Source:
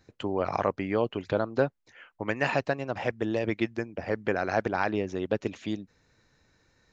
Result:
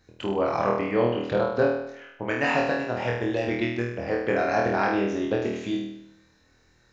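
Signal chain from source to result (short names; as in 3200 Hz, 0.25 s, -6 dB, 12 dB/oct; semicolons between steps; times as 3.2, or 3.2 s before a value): flutter echo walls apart 4.3 m, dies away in 0.75 s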